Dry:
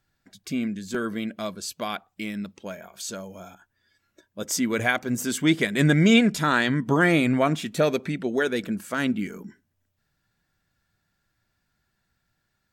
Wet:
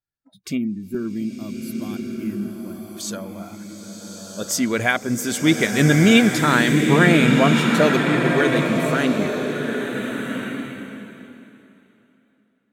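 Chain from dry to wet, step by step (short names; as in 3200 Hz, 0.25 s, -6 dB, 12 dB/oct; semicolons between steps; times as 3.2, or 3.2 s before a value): spectral gain 0.58–2.96, 400–10000 Hz -15 dB; spectral noise reduction 25 dB; tape echo 0.699 s, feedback 24%, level -20 dB, low-pass 2400 Hz; bloom reverb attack 1.42 s, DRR 2 dB; gain +3.5 dB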